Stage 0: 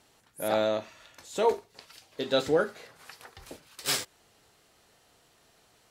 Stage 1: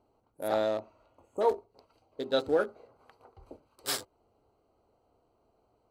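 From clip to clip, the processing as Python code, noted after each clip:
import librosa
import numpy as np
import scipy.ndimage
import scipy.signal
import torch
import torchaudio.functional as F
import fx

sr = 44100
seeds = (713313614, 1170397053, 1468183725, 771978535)

y = fx.wiener(x, sr, points=25)
y = fx.spec_repair(y, sr, seeds[0], start_s=1.17, length_s=0.22, low_hz=1300.0, high_hz=6300.0, source='before')
y = fx.graphic_eq_15(y, sr, hz=(160, 2500, 6300), db=(-10, -7, -4))
y = y * librosa.db_to_amplitude(-1.0)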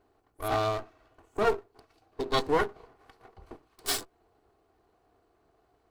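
y = fx.lower_of_two(x, sr, delay_ms=2.7)
y = y * librosa.db_to_amplitude(4.0)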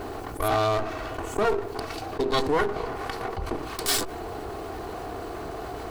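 y = fx.env_flatten(x, sr, amount_pct=70)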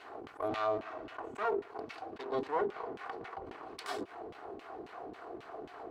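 y = fx.law_mismatch(x, sr, coded='A')
y = fx.filter_lfo_bandpass(y, sr, shape='saw_down', hz=3.7, low_hz=220.0, high_hz=3000.0, q=1.4)
y = y * librosa.db_to_amplitude(-4.0)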